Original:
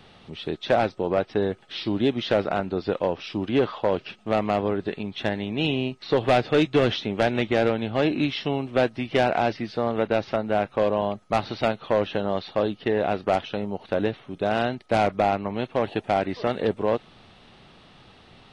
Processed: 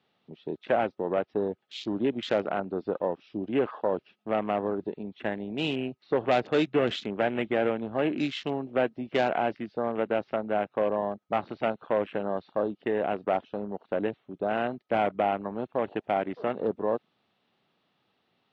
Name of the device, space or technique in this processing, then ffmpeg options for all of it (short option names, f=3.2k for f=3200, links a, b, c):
over-cleaned archive recording: -af "highpass=170,lowpass=5.4k,afwtdn=0.0178,volume=-4dB"